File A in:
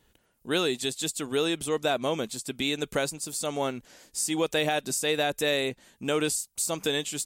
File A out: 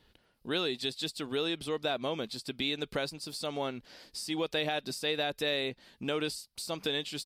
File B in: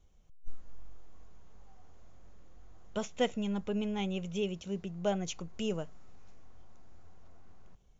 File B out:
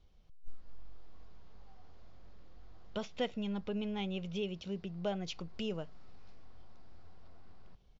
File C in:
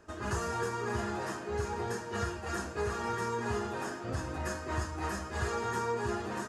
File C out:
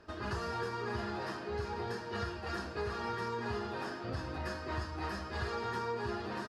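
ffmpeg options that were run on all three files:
-af "aresample=32000,aresample=44100,acompressor=threshold=-40dB:ratio=1.5,highshelf=f=5.7k:t=q:w=3:g=-6.5"

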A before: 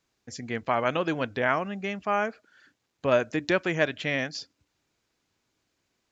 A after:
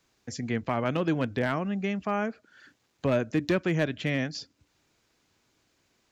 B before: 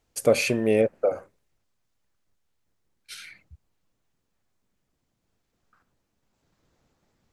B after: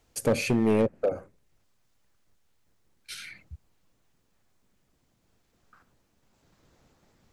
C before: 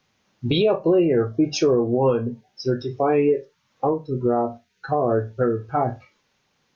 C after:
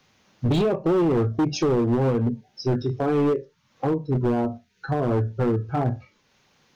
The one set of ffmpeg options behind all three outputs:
-filter_complex "[0:a]acrossover=split=320[a][b];[b]acompressor=threshold=-53dB:ratio=1.5[c];[a][c]amix=inputs=2:normalize=0,volume=23.5dB,asoftclip=hard,volume=-23.5dB,volume=6dB"

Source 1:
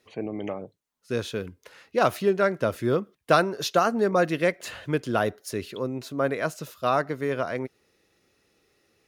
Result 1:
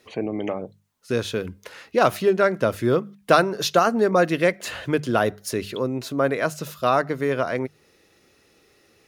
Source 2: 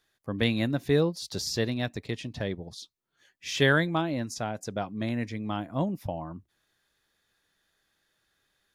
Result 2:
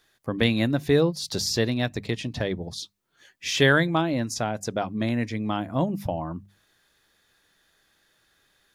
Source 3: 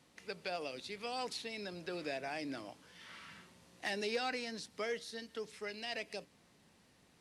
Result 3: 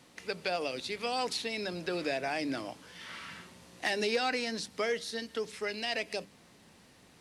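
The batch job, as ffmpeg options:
-filter_complex "[0:a]bandreject=f=50:t=h:w=6,bandreject=f=100:t=h:w=6,bandreject=f=150:t=h:w=6,bandreject=f=200:t=h:w=6,asplit=2[a][b];[b]acompressor=threshold=-37dB:ratio=6,volume=-0.5dB[c];[a][c]amix=inputs=2:normalize=0,volume=2.5dB"

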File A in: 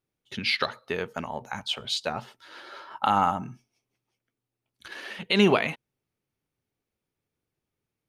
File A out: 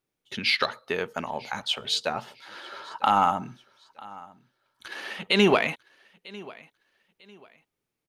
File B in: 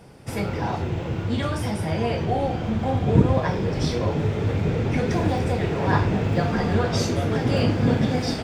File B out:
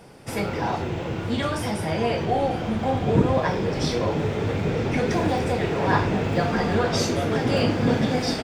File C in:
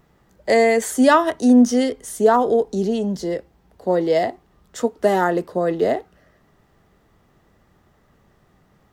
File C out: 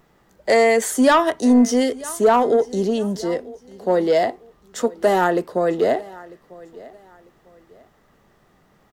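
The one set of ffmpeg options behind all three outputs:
-filter_complex "[0:a]equalizer=f=73:t=o:w=2.6:g=-7.5,asplit=2[a][b];[b]aecho=0:1:947|1894:0.0794|0.0238[c];[a][c]amix=inputs=2:normalize=0,asoftclip=type=tanh:threshold=-9dB,volume=2.5dB"

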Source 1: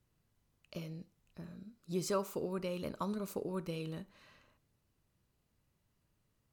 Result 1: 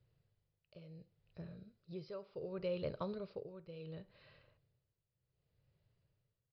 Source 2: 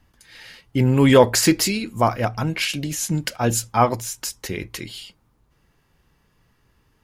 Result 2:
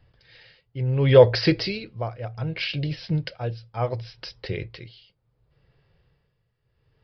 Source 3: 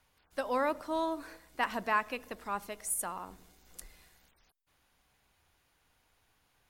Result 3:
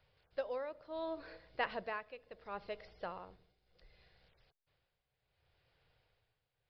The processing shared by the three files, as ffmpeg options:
-af "equalizer=f=125:t=o:w=1:g=10,equalizer=f=250:t=o:w=1:g=-11,equalizer=f=500:t=o:w=1:g=9,equalizer=f=1k:t=o:w=1:g=-6,tremolo=f=0.69:d=0.79,aresample=11025,aresample=44100,volume=-2dB"

